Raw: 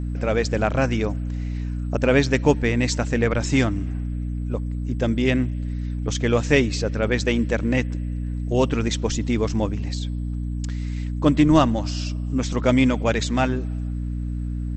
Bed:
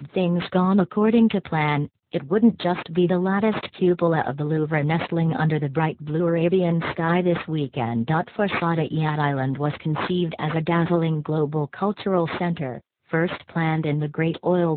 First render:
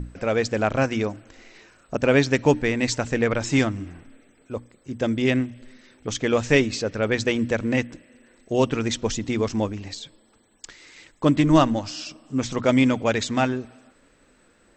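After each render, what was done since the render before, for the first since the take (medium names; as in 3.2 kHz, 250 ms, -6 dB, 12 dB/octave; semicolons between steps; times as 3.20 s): hum notches 60/120/180/240/300 Hz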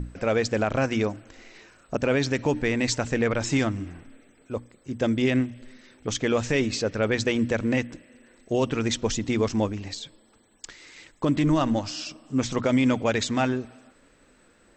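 peak limiter -13.5 dBFS, peak gain reduction 9 dB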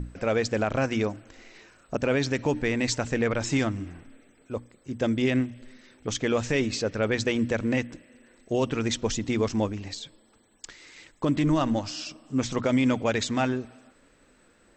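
trim -1.5 dB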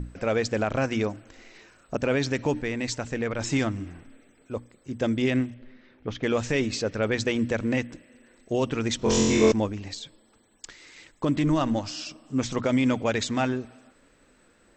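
2.61–3.39 s: gain -3.5 dB; 5.54–6.23 s: distance through air 290 m; 8.97–9.52 s: flutter echo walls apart 3.9 m, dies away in 1.5 s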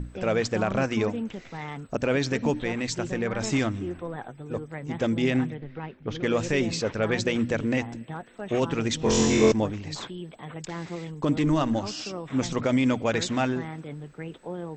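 add bed -15 dB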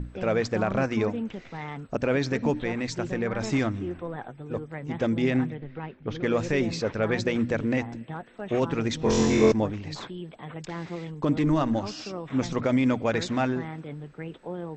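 Bessel low-pass 4.7 kHz, order 2; dynamic bell 3 kHz, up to -5 dB, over -48 dBFS, Q 3.4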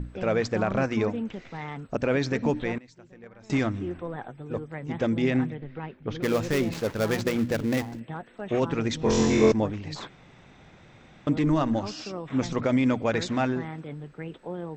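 2.78–3.50 s: gate -24 dBFS, range -21 dB; 6.22–8.00 s: dead-time distortion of 0.13 ms; 10.09–11.27 s: room tone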